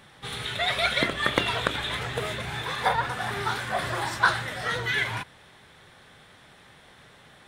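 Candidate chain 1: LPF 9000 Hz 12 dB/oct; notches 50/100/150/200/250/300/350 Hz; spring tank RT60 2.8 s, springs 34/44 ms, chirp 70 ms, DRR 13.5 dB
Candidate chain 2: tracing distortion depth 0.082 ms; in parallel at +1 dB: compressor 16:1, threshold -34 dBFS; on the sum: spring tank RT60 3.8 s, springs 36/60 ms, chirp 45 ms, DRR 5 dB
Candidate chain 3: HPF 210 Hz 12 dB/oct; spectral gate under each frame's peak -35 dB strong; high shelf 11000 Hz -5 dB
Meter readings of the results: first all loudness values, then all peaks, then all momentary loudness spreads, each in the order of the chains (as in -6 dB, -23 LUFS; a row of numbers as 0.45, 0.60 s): -27.0, -23.5, -27.0 LUFS; -3.5, -2.0, -5.0 dBFS; 9, 19, 8 LU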